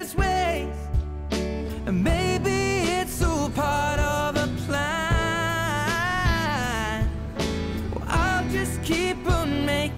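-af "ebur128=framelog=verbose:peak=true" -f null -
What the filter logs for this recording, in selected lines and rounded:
Integrated loudness:
  I:         -24.8 LUFS
  Threshold: -34.8 LUFS
Loudness range:
  LRA:         1.3 LU
  Threshold: -44.7 LUFS
  LRA low:   -25.4 LUFS
  LRA high:  -24.1 LUFS
True peak:
  Peak:      -13.1 dBFS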